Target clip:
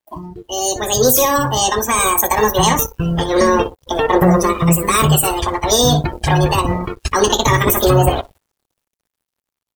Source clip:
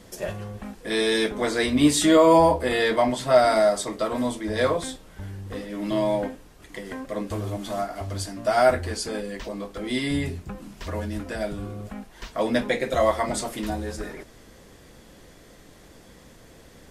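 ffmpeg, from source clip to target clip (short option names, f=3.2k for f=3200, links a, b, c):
-filter_complex "[0:a]aphaser=in_gain=1:out_gain=1:delay=2.3:decay=0.4:speed=0.14:type=triangular,acrossover=split=940[a][b];[a]asoftclip=type=tanh:threshold=-15.5dB[c];[c][b]amix=inputs=2:normalize=0,acrossover=split=330|3000[d][e][f];[e]acompressor=threshold=-32dB:ratio=6[g];[d][g][f]amix=inputs=3:normalize=0,asplit=2[h][i];[i]aecho=0:1:104|208|312:0.282|0.0817|0.0237[j];[h][j]amix=inputs=2:normalize=0,asetrate=76440,aresample=44100,aeval=exprs='sgn(val(0))*max(abs(val(0))-0.00891,0)':c=same,agate=range=-10dB:threshold=-55dB:ratio=16:detection=peak,dynaudnorm=f=220:g=7:m=16dB,afftdn=nr=21:nf=-31,highshelf=f=5.7k:g=6,alimiter=level_in=5dB:limit=-1dB:release=50:level=0:latency=1,volume=-1dB"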